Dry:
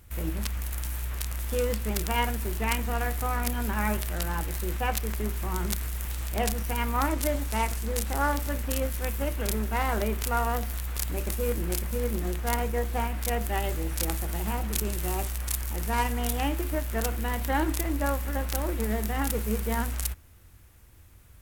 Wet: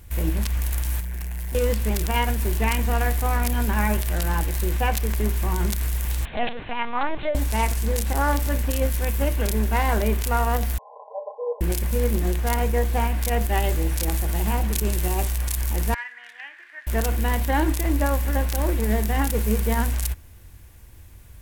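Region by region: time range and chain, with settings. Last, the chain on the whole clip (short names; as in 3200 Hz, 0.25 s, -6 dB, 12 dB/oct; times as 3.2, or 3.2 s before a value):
1–1.55 fixed phaser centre 780 Hz, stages 8 + overloaded stage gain 35.5 dB
6.25–7.35 HPF 390 Hz 6 dB/oct + LPC vocoder at 8 kHz pitch kept
10.78–11.61 brick-wall FIR band-pass 440–1100 Hz + comb 4.9 ms, depth 87%
15.94–16.87 ladder band-pass 1900 Hz, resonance 75% + tilt shelf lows +3.5 dB, about 1400 Hz
whole clip: low shelf 61 Hz +5.5 dB; notch 1300 Hz, Q 8.3; limiter -16.5 dBFS; gain +5.5 dB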